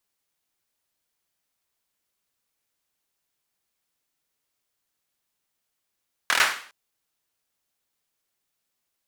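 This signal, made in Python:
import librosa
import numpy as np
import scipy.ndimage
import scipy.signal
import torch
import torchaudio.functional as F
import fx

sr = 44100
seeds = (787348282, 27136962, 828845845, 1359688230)

y = fx.drum_clap(sr, seeds[0], length_s=0.41, bursts=5, spacing_ms=25, hz=1600.0, decay_s=0.48)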